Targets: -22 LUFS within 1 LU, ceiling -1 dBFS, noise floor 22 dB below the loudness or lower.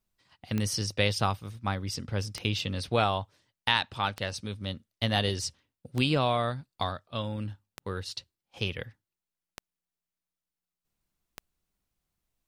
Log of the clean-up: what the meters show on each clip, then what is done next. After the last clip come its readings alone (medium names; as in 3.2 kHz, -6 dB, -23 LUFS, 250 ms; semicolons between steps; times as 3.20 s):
clicks found 7; loudness -30.5 LUFS; peak level -8.0 dBFS; loudness target -22.0 LUFS
-> de-click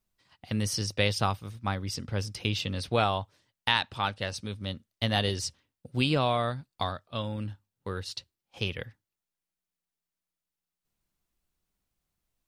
clicks found 0; loudness -30.5 LUFS; peak level -8.0 dBFS; loudness target -22.0 LUFS
-> trim +8.5 dB; peak limiter -1 dBFS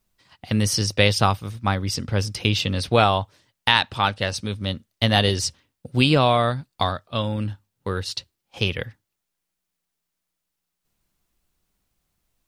loudness -22.5 LUFS; peak level -1.0 dBFS; noise floor -81 dBFS